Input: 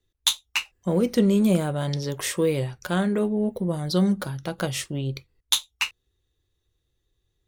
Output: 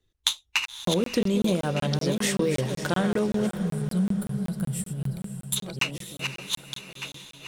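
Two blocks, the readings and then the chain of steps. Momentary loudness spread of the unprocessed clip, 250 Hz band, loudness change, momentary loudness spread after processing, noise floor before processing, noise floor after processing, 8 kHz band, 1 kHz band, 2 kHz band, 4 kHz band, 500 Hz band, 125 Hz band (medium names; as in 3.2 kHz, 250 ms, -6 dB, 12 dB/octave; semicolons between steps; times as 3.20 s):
8 LU, -2.5 dB, -2.5 dB, 8 LU, -76 dBFS, -83 dBFS, -1.0 dB, -0.5 dB, +1.0 dB, -1.5 dB, -2.0 dB, -1.0 dB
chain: backward echo that repeats 604 ms, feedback 48%, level -9 dB; time-frequency box 3.46–5.57 s, 230–7200 Hz -19 dB; treble shelf 12 kHz -9 dB; harmonic-percussive split percussive +4 dB; compression, threshold -20 dBFS, peak gain reduction 8 dB; echo that smears into a reverb 549 ms, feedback 44%, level -12 dB; crackling interface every 0.19 s, samples 1024, zero, from 0.66 s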